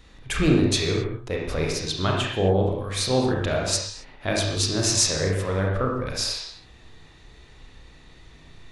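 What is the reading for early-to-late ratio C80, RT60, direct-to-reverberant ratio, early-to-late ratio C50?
4.5 dB, not exponential, -1.5 dB, 1.0 dB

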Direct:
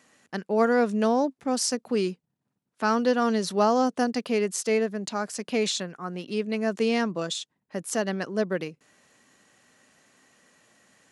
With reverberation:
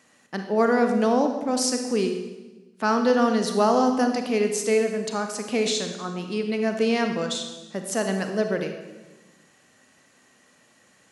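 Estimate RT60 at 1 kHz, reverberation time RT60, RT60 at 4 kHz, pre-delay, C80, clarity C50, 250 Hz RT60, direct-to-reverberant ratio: 1.1 s, 1.2 s, 1.0 s, 30 ms, 8.5 dB, 6.0 dB, 1.5 s, 5.0 dB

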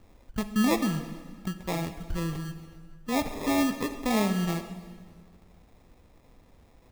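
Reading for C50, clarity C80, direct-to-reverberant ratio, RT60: 10.5 dB, 11.5 dB, 9.0 dB, 1.8 s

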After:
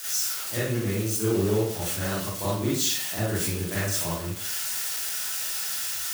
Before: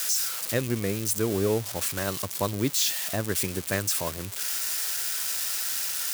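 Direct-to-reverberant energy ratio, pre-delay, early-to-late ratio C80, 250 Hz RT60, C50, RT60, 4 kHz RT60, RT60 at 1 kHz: -9.5 dB, 33 ms, 4.5 dB, 0.60 s, -1.0 dB, 0.55 s, 0.45 s, 0.55 s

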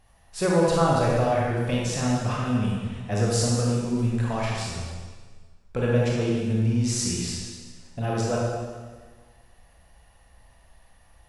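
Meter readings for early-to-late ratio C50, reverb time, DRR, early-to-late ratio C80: -1.5 dB, 1.5 s, -4.5 dB, 0.5 dB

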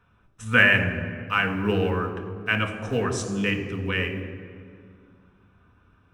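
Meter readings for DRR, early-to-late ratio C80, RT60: 3.0 dB, 9.0 dB, 2.1 s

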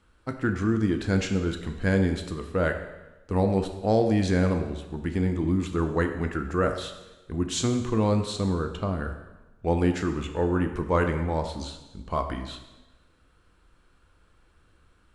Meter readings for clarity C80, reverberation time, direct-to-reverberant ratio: 10.0 dB, 1.1 s, 5.5 dB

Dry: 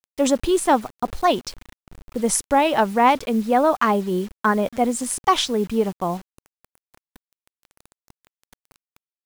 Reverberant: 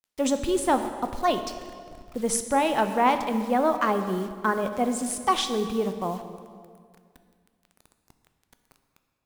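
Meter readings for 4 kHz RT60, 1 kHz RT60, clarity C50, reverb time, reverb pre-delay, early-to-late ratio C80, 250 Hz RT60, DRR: 1.6 s, 1.9 s, 9.0 dB, 2.0 s, 10 ms, 10.0 dB, 2.3 s, 7.5 dB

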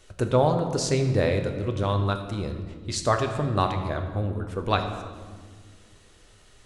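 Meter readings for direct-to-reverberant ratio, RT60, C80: 5.0 dB, 1.6 s, 9.0 dB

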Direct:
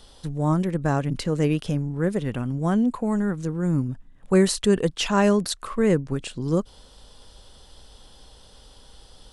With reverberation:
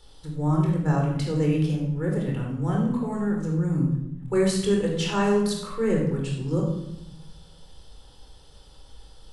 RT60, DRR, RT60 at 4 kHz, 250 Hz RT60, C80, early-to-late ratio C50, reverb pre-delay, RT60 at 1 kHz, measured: 0.80 s, -0.5 dB, 0.60 s, 1.3 s, 6.5 dB, 3.5 dB, 22 ms, 0.70 s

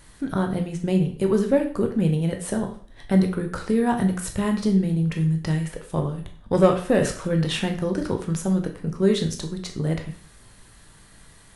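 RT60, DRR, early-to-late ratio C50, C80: 0.45 s, 3.5 dB, 9.5 dB, 13.5 dB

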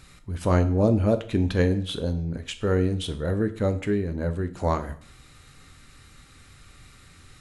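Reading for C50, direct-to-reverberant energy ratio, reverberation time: 14.5 dB, 9.0 dB, 0.55 s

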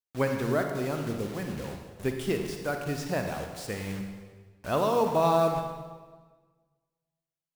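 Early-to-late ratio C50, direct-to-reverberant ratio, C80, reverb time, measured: 5.0 dB, 4.0 dB, 6.5 dB, 1.4 s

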